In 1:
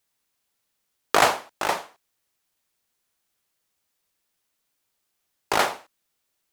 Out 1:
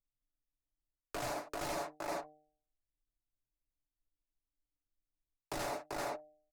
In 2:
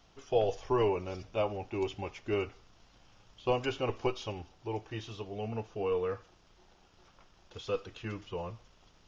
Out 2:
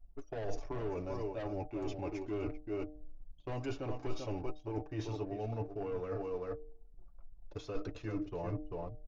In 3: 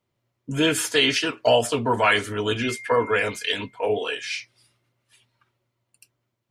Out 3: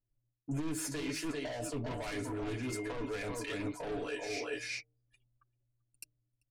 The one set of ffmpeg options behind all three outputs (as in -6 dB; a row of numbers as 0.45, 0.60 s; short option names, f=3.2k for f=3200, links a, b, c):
-filter_complex "[0:a]aecho=1:1:390:0.316,anlmdn=0.00398,equalizer=f=315:t=o:w=0.33:g=11,equalizer=f=630:t=o:w=0.33:g=9,equalizer=f=3.15k:t=o:w=0.33:g=-12,alimiter=limit=-9.5dB:level=0:latency=1:release=454,asoftclip=type=tanh:threshold=-22.5dB,acrossover=split=260|3000[a][b][c];[b]acompressor=threshold=-31dB:ratio=6[d];[a][d][c]amix=inputs=3:normalize=0,bandreject=f=151.9:t=h:w=4,bandreject=f=303.8:t=h:w=4,bandreject=f=455.7:t=h:w=4,bandreject=f=607.6:t=h:w=4,bandreject=f=759.5:t=h:w=4,areverse,acompressor=threshold=-40dB:ratio=16,areverse,lowshelf=f=81:g=11.5,aecho=1:1:7:0.44,volume=3.5dB"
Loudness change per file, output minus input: -17.0, -5.5, -15.5 LU